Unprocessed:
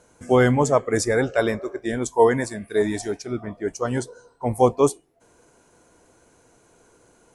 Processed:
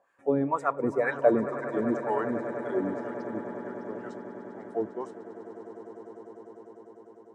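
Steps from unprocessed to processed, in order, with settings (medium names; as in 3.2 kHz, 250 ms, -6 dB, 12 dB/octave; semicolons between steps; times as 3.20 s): Doppler pass-by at 1.47 s, 39 m/s, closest 25 m; dynamic bell 4.2 kHz, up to -4 dB, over -47 dBFS, Q 1.2; wah-wah 2 Hz 250–1700 Hz, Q 2.1; echo with a slow build-up 100 ms, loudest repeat 8, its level -17.5 dB; trim +3 dB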